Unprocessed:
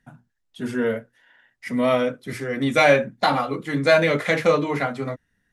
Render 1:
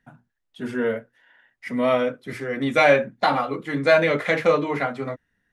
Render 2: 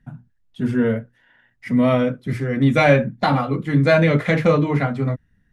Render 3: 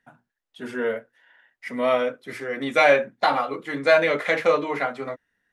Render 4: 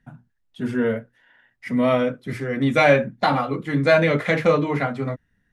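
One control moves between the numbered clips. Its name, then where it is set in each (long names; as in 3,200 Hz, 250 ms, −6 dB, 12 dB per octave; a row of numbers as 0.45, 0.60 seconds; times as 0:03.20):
bass and treble, bass: −4, +13, −15, +5 decibels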